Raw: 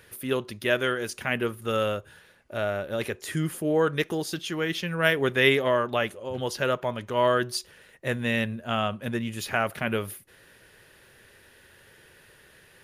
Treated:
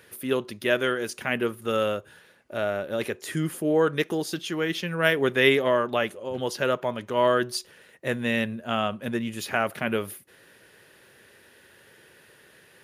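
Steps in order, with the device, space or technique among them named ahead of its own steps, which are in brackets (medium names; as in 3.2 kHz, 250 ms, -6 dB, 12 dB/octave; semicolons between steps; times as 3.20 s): filter by subtraction (in parallel: low-pass 250 Hz 12 dB/octave + polarity flip)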